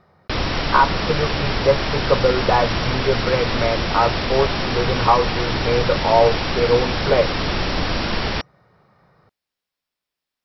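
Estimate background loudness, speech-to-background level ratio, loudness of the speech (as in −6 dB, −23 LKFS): −22.5 LKFS, 2.0 dB, −20.5 LKFS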